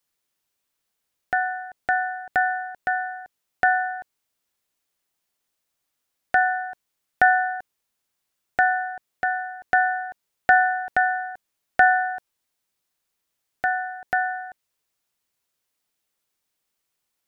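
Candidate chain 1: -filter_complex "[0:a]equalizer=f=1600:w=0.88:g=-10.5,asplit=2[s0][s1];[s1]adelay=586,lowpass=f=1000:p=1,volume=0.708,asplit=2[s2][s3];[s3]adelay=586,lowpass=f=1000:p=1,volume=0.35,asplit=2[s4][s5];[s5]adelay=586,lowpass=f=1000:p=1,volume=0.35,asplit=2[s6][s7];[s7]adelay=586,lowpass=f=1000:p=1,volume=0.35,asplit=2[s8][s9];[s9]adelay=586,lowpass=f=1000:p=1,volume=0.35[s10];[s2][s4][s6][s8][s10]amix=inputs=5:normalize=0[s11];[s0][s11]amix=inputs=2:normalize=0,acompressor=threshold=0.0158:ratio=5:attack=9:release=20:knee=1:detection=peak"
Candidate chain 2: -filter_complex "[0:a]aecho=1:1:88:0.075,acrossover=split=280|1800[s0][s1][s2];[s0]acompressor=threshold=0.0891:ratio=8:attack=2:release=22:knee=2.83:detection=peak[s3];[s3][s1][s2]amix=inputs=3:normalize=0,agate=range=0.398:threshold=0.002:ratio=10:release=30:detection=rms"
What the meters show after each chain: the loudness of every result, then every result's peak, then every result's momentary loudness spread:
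-37.5 LUFS, -23.0 LUFS; -13.0 dBFS, -4.0 dBFS; 10 LU, 15 LU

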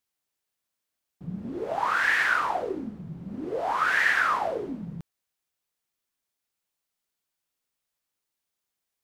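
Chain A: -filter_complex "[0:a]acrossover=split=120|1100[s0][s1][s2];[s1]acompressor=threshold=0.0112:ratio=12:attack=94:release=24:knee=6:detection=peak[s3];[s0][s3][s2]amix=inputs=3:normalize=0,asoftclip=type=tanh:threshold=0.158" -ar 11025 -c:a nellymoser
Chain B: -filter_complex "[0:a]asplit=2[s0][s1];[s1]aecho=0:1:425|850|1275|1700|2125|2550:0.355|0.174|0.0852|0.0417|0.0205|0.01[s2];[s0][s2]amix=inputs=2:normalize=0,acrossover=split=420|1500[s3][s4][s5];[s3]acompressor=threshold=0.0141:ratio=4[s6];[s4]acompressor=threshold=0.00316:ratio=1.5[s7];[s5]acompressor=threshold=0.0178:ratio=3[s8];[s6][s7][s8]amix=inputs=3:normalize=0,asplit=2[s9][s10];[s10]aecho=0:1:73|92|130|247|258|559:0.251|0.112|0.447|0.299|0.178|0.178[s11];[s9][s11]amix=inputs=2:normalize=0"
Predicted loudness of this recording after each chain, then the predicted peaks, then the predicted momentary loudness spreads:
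-27.5 LUFS, -31.0 LUFS; -15.5 dBFS, -16.5 dBFS; 17 LU, 17 LU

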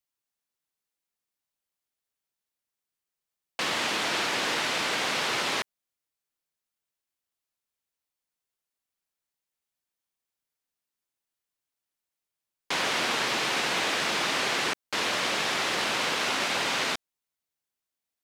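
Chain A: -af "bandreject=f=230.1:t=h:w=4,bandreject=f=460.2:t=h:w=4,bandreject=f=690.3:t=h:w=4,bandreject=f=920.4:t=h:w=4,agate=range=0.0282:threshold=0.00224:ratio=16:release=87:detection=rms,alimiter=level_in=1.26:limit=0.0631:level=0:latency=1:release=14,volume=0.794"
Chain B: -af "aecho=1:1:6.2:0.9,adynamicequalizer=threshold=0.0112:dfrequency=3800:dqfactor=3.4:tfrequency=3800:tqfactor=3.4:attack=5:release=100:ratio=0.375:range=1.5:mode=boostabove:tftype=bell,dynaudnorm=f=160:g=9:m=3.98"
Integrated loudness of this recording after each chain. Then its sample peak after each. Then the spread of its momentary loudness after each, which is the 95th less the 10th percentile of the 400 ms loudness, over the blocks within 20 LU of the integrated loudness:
-33.0 LUFS, -13.5 LUFS; -26.0 dBFS, -2.0 dBFS; 3 LU, 4 LU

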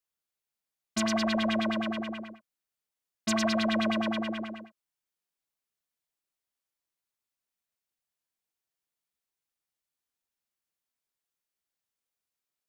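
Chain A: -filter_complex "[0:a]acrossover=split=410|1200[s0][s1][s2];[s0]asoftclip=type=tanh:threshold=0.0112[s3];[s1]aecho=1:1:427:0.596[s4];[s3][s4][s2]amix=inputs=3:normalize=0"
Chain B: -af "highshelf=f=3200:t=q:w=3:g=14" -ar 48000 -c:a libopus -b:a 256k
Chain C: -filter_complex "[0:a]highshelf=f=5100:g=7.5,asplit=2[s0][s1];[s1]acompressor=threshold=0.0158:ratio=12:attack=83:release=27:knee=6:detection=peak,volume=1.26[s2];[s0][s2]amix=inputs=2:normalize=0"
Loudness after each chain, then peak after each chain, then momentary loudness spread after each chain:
-32.0 LUFS, -20.0 LUFS, -24.0 LUFS; -17.5 dBFS, -1.0 dBFS, -7.5 dBFS; 15 LU, 17 LU, 12 LU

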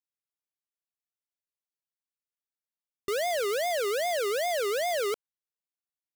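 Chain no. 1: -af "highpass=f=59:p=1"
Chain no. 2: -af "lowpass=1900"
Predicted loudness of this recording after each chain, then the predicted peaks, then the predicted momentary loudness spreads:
-28.5 LUFS, -30.0 LUFS; -25.5 dBFS, -27.5 dBFS; 5 LU, 5 LU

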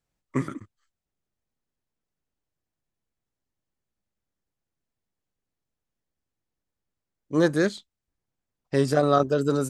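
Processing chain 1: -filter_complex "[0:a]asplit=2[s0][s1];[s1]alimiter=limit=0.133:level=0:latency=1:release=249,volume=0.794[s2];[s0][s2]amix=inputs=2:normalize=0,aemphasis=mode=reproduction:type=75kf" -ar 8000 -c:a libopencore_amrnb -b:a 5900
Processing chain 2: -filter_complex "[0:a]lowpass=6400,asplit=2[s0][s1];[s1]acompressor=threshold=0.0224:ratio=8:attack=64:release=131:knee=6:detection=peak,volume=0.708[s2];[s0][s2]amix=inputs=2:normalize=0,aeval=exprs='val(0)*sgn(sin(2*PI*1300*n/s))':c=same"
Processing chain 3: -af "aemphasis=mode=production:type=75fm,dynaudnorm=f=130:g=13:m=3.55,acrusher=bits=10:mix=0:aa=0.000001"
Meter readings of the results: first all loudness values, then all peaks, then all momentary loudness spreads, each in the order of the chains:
-22.5 LUFS, -20.5 LUFS, -21.0 LUFS; -6.5 dBFS, -6.0 dBFS, -1.0 dBFS; 10 LU, 9 LU, 14 LU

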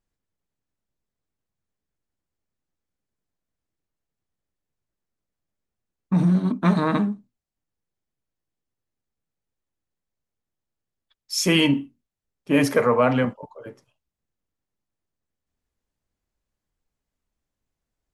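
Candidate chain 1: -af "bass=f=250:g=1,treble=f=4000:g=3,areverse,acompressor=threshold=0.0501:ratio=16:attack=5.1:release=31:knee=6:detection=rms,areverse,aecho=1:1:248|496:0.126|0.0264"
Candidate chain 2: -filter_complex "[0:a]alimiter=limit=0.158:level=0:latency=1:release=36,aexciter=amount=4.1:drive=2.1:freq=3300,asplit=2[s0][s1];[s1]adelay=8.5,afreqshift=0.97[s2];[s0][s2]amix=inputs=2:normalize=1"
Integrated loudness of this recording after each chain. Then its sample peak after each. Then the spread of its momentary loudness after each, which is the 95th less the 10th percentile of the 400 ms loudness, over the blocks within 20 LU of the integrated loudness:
-30.5 LUFS, -25.5 LUFS; -17.5 dBFS, -7.0 dBFS; 14 LU, 13 LU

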